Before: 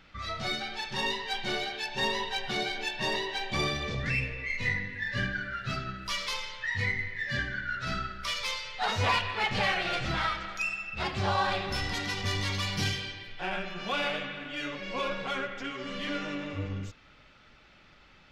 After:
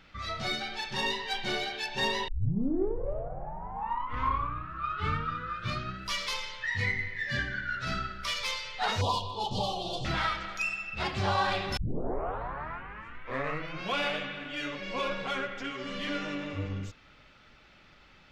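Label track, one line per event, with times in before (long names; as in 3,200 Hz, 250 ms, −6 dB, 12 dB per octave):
2.280000	2.280000	tape start 3.73 s
9.010000	10.050000	elliptic band-stop filter 1,000–3,300 Hz, stop band 50 dB
11.770000	11.770000	tape start 2.23 s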